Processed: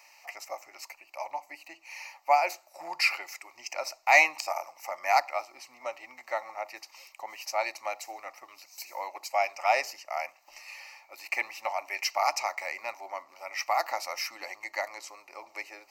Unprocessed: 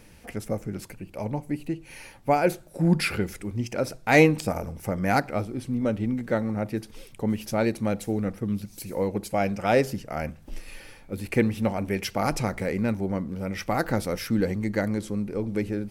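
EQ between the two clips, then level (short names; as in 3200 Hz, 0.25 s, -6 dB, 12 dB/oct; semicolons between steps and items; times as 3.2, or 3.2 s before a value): inverse Chebyshev high-pass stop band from 220 Hz, stop band 50 dB; fixed phaser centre 2300 Hz, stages 8; +4.0 dB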